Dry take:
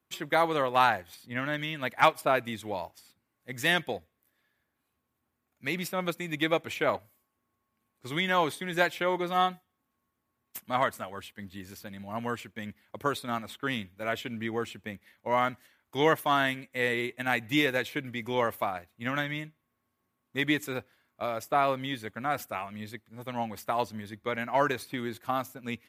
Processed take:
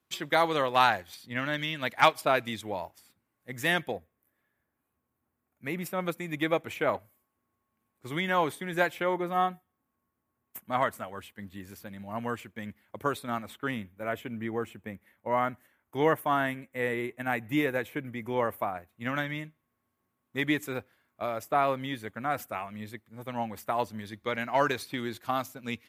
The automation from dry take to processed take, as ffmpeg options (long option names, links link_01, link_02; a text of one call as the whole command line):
ffmpeg -i in.wav -af "asetnsamples=nb_out_samples=441:pad=0,asendcmd='2.61 equalizer g -5;3.92 equalizer g -14.5;5.86 equalizer g -7;9.14 equalizer g -14;10.72 equalizer g -6;13.71 equalizer g -14.5;18.89 equalizer g -4.5;23.99 equalizer g 3.5',equalizer=frequency=4500:width_type=o:width=1.4:gain=4.5" out.wav